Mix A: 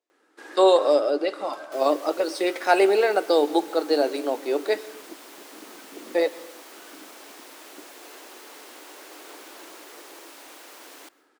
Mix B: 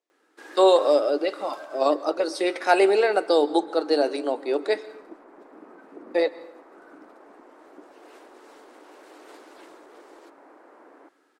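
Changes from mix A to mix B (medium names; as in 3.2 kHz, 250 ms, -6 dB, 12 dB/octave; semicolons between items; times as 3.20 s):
first sound: send off; second sound: add Gaussian low-pass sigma 6.1 samples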